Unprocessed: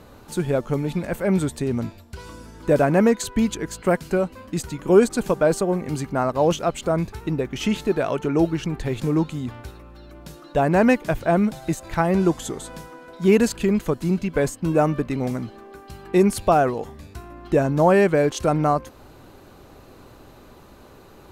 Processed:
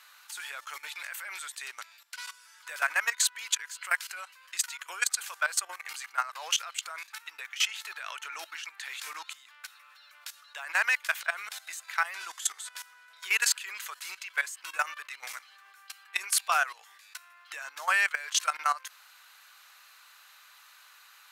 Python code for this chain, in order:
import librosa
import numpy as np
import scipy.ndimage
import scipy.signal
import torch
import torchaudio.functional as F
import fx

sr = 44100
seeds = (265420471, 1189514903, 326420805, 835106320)

y = scipy.signal.sosfilt(scipy.signal.butter(4, 1400.0, 'highpass', fs=sr, output='sos'), x)
y = fx.level_steps(y, sr, step_db=16)
y = F.gain(torch.from_numpy(y), 8.0).numpy()